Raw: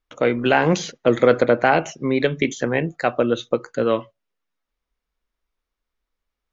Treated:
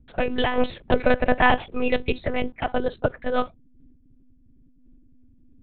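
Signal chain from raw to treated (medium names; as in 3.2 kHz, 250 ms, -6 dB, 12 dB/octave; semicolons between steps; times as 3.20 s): hum 60 Hz, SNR 26 dB; in parallel at -12 dB: word length cut 6-bit, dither none; on the sum: tape speed +16%; monotone LPC vocoder at 8 kHz 250 Hz; random flutter of the level, depth 65%; trim -1 dB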